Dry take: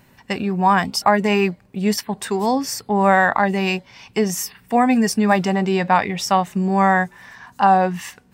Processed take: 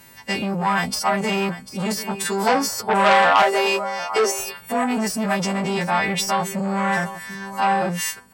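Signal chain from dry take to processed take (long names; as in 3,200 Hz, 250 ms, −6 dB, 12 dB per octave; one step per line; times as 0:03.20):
every partial snapped to a pitch grid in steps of 2 semitones
de-essing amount 40%
0:03.42–0:04.39: Butterworth high-pass 240 Hz 96 dB per octave
in parallel at −2 dB: compressor whose output falls as the input rises −23 dBFS, ratio −1
0:02.47–0:04.66: on the sum: gain on a spectral selection 390–1,500 Hz +8 dB
on a send: single-tap delay 745 ms −15 dB
on the sum: saturating transformer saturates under 1,900 Hz
level −5 dB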